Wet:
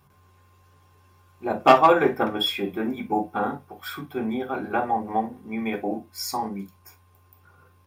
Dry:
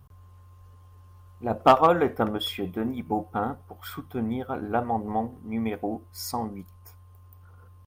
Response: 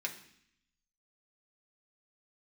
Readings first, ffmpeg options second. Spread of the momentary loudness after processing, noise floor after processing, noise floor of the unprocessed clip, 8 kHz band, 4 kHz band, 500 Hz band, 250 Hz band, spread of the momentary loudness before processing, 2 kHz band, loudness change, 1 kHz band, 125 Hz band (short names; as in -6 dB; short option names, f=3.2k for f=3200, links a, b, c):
16 LU, -58 dBFS, -51 dBFS, +3.0 dB, +6.0 dB, +2.5 dB, +1.5 dB, 16 LU, +7.0 dB, +2.5 dB, +3.0 dB, -4.0 dB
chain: -filter_complex "[1:a]atrim=start_sample=2205,atrim=end_sample=3087[a];[0:a][a]afir=irnorm=-1:irlink=0,volume=4dB"